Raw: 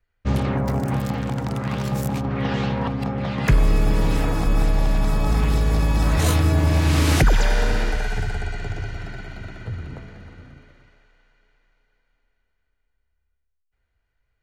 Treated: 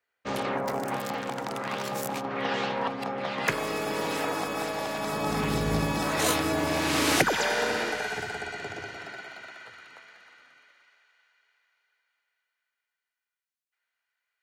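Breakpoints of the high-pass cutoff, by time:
4.93 s 420 Hz
5.75 s 130 Hz
6.09 s 320 Hz
8.84 s 320 Hz
9.86 s 1.2 kHz

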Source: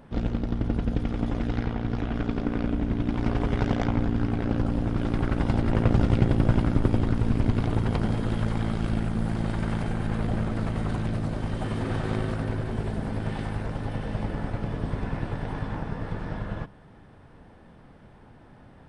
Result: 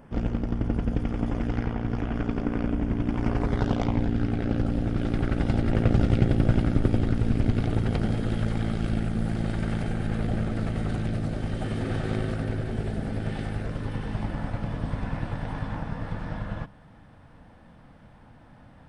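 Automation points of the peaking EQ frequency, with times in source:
peaking EQ -12 dB 0.28 oct
3.32 s 3.9 kHz
4.14 s 1 kHz
13.60 s 1 kHz
14.41 s 390 Hz

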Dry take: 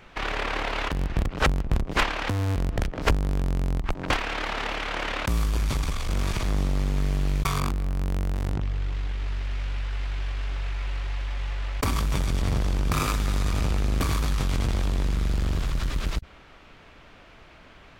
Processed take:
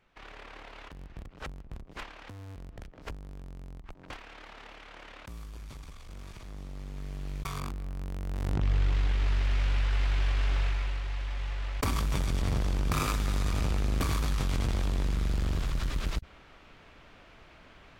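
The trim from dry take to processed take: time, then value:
6.48 s -19 dB
7.58 s -10 dB
8.19 s -10 dB
8.72 s +2.5 dB
10.61 s +2.5 dB
11.01 s -4 dB

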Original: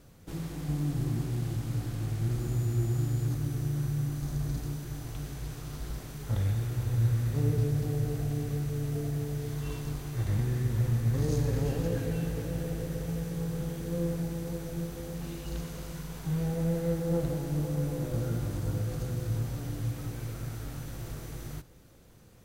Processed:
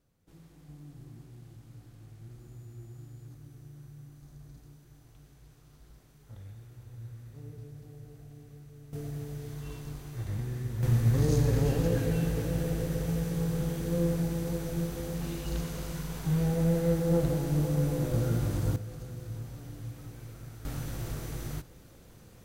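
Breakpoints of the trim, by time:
-18 dB
from 8.93 s -5.5 dB
from 10.83 s +3 dB
from 18.76 s -8 dB
from 20.65 s +3 dB

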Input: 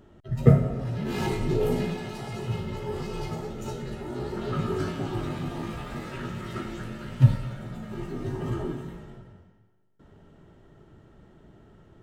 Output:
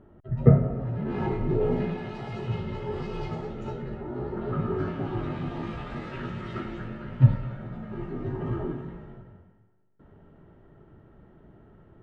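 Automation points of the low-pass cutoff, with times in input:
1.48 s 1.5 kHz
2.35 s 3.3 kHz
3.44 s 3.3 kHz
4.04 s 1.5 kHz
4.59 s 1.5 kHz
5.69 s 3.5 kHz
6.51 s 3.5 kHz
7.05 s 2 kHz

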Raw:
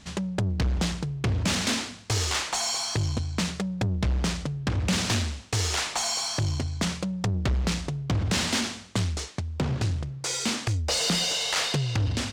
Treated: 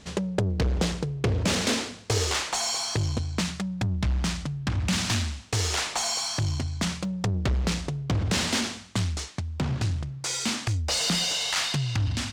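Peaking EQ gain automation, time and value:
peaking EQ 460 Hz 0.73 oct
+8.5 dB
from 2.34 s +2 dB
from 3.41 s -9.5 dB
from 5.48 s +1.5 dB
from 6.19 s -5 dB
from 7.05 s +1.5 dB
from 8.78 s -5.5 dB
from 11.50 s -12.5 dB

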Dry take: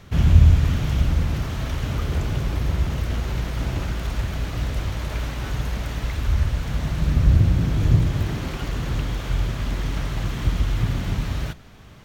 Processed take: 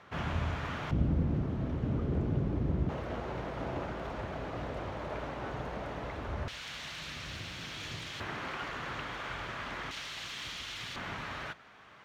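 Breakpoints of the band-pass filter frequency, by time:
band-pass filter, Q 0.95
1.1 kHz
from 0.91 s 270 Hz
from 2.89 s 640 Hz
from 6.48 s 3.4 kHz
from 8.20 s 1.4 kHz
from 9.91 s 3.7 kHz
from 10.96 s 1.4 kHz

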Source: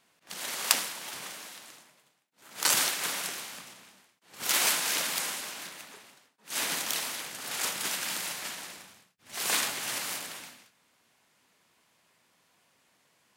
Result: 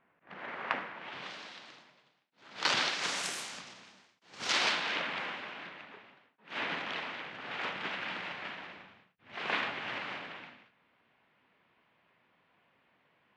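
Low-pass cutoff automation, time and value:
low-pass 24 dB/octave
0.93 s 2.1 kHz
1.33 s 4.5 kHz
2.85 s 4.5 kHz
3.37 s 10 kHz
3.65 s 6 kHz
4.41 s 6 kHz
5.06 s 2.9 kHz

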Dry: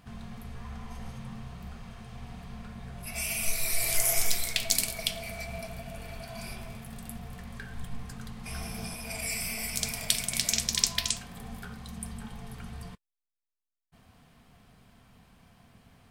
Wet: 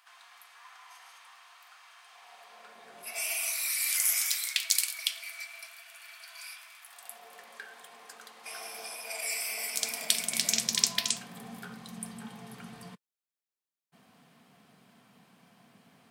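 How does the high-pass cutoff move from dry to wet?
high-pass 24 dB/octave
2.01 s 960 Hz
3.00 s 310 Hz
3.74 s 1.2 kHz
6.78 s 1.2 kHz
7.26 s 430 Hz
9.48 s 430 Hz
10.56 s 160 Hz

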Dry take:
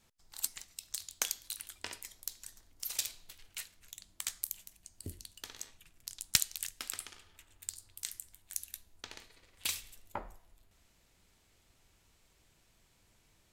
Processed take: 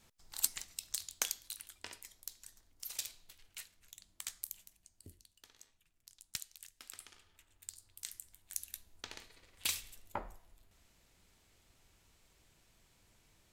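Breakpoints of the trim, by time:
0.70 s +3 dB
1.71 s -5.5 dB
4.62 s -5.5 dB
5.28 s -14.5 dB
6.70 s -14.5 dB
7.14 s -6.5 dB
7.71 s -6.5 dB
8.90 s 0 dB

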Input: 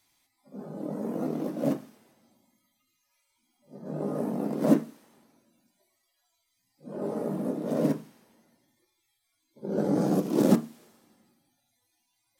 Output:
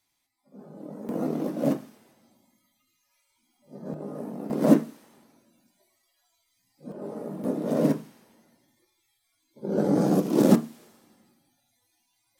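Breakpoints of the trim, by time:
-6 dB
from 1.09 s +2.5 dB
from 3.94 s -5.5 dB
from 4.50 s +3.5 dB
from 6.92 s -4.5 dB
from 7.44 s +3 dB

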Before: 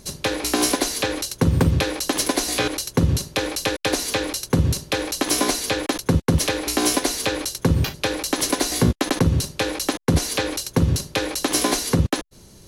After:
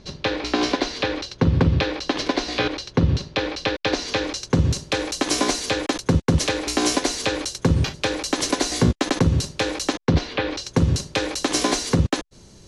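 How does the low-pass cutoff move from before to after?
low-pass 24 dB/octave
3.73 s 4.7 kHz
4.86 s 8.4 kHz
9.85 s 8.4 kHz
10.37 s 3.2 kHz
10.76 s 8.4 kHz

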